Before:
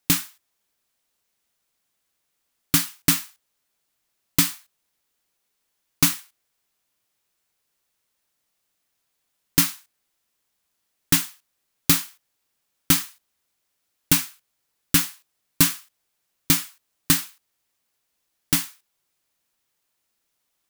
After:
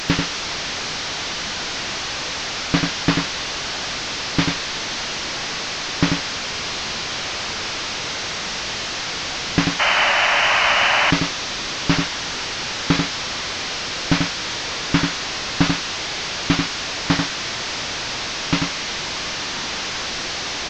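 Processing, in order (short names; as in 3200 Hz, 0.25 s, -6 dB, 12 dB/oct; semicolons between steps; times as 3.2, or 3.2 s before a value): delta modulation 32 kbps, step -25.5 dBFS; echo 90 ms -4.5 dB; painted sound noise, 9.79–11.11, 550–3100 Hz -22 dBFS; gain +5 dB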